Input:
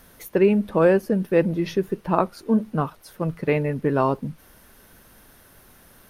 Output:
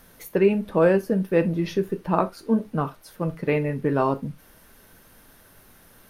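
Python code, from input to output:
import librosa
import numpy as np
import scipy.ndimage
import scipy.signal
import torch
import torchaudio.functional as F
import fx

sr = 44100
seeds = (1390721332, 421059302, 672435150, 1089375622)

y = fx.rev_gated(x, sr, seeds[0], gate_ms=100, shape='falling', drr_db=9.5)
y = y * librosa.db_to_amplitude(-1.5)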